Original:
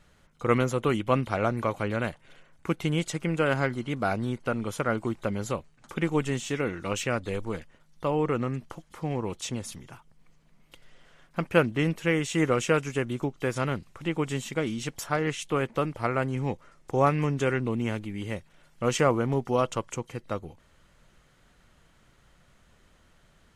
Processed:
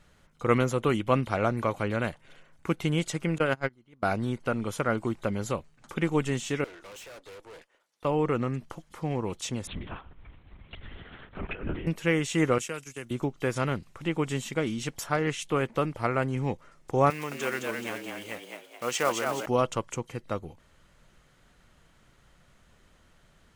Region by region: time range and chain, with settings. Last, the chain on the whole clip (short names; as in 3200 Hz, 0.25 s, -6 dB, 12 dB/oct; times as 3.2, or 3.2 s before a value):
3.38–4.03 gate -25 dBFS, range -27 dB + notch 7800 Hz, Q 15
6.64–8.05 HPF 370 Hz 24 dB/oct + tube stage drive 44 dB, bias 0.8
9.67–11.87 feedback echo 0.113 s, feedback 32%, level -22.5 dB + negative-ratio compressor -34 dBFS + LPC vocoder at 8 kHz whisper
12.58–13.11 gate -37 dBFS, range -12 dB + pre-emphasis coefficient 0.8 + three-band squash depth 40%
17.1–19.46 block floating point 5-bit + HPF 800 Hz 6 dB/oct + frequency-shifting echo 0.214 s, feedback 44%, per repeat +83 Hz, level -4 dB
whole clip: dry